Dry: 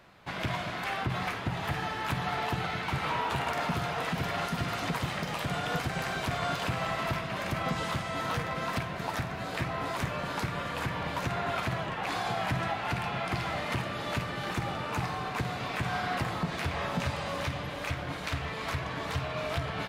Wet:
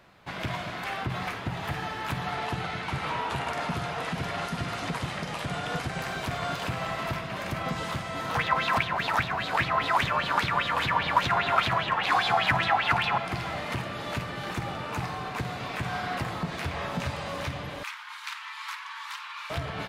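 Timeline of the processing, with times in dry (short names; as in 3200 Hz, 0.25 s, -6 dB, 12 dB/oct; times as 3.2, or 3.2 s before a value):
2.31–6.01 brick-wall FIR low-pass 12000 Hz
8.35–13.18 LFO bell 5 Hz 850–3900 Hz +18 dB
17.83–19.5 Chebyshev high-pass 900 Hz, order 6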